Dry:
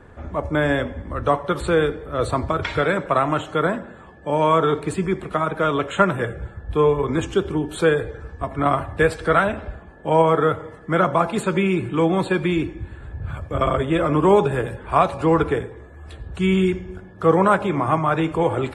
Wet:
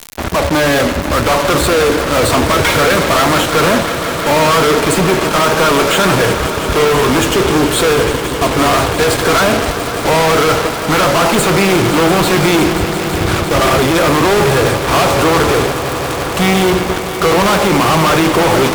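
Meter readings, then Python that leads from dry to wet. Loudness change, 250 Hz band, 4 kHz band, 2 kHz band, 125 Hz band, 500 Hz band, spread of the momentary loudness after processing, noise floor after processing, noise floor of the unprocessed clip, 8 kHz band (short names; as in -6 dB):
+9.0 dB, +8.5 dB, +19.0 dB, +12.0 dB, +8.0 dB, +8.0 dB, 5 LU, -19 dBFS, -43 dBFS, +23.5 dB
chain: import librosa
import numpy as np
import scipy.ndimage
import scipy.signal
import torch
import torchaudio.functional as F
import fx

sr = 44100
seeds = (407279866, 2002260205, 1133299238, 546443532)

p1 = fx.low_shelf(x, sr, hz=130.0, db=-10.5)
p2 = fx.notch(p1, sr, hz=1800.0, q=12.0)
p3 = fx.dmg_crackle(p2, sr, seeds[0], per_s=330.0, level_db=-35.0)
p4 = fx.fuzz(p3, sr, gain_db=43.0, gate_db=-36.0)
p5 = p4 + fx.echo_swell(p4, sr, ms=172, loudest=5, wet_db=-14.5, dry=0)
y = p5 * 10.0 ** (3.0 / 20.0)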